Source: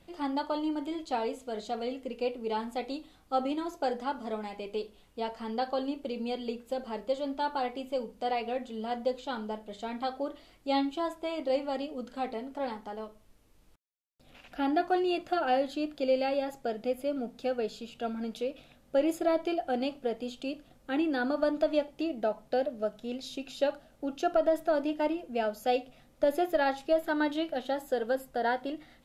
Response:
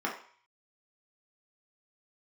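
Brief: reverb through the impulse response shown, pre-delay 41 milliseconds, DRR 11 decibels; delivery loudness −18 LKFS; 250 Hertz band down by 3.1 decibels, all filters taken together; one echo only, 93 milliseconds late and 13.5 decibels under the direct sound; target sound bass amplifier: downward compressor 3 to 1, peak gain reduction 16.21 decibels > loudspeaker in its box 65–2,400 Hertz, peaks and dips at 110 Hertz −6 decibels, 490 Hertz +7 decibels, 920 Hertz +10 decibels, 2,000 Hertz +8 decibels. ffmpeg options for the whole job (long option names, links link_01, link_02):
-filter_complex "[0:a]equalizer=frequency=250:width_type=o:gain=-4.5,aecho=1:1:93:0.211,asplit=2[link_01][link_02];[1:a]atrim=start_sample=2205,adelay=41[link_03];[link_02][link_03]afir=irnorm=-1:irlink=0,volume=-19dB[link_04];[link_01][link_04]amix=inputs=2:normalize=0,acompressor=threshold=-44dB:ratio=3,highpass=frequency=65:width=0.5412,highpass=frequency=65:width=1.3066,equalizer=frequency=110:width_type=q:width=4:gain=-6,equalizer=frequency=490:width_type=q:width=4:gain=7,equalizer=frequency=920:width_type=q:width=4:gain=10,equalizer=frequency=2000:width_type=q:width=4:gain=8,lowpass=frequency=2400:width=0.5412,lowpass=frequency=2400:width=1.3066,volume=22.5dB"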